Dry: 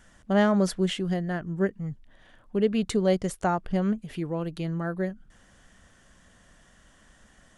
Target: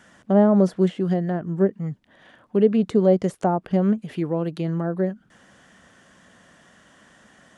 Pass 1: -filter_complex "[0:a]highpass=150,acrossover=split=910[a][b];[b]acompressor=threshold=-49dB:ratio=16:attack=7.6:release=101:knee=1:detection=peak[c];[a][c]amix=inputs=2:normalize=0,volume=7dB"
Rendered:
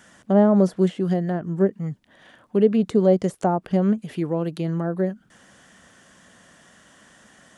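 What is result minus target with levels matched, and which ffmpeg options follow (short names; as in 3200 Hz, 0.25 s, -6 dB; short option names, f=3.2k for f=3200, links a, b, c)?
8000 Hz band +3.0 dB
-filter_complex "[0:a]highpass=150,highshelf=f=5.4k:g=-8,acrossover=split=910[a][b];[b]acompressor=threshold=-49dB:ratio=16:attack=7.6:release=101:knee=1:detection=peak[c];[a][c]amix=inputs=2:normalize=0,volume=7dB"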